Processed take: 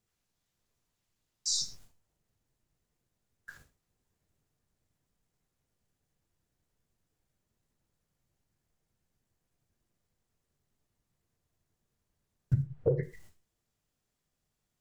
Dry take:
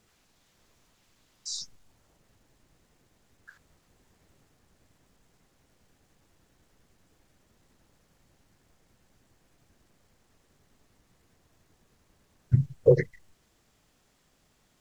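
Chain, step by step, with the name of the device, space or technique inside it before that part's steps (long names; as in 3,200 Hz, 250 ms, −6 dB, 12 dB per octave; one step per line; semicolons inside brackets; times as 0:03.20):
0:12.62–0:13.03: Bessel low-pass filter 1,500 Hz, order 2
noise gate with hold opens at −48 dBFS
ASMR close-microphone chain (low-shelf EQ 150 Hz +6 dB; downward compressor 6 to 1, threshold −29 dBFS, peak gain reduction 16.5 dB; high-shelf EQ 7,100 Hz +8 dB)
reverb whose tail is shaped and stops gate 150 ms falling, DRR 9 dB
level +2 dB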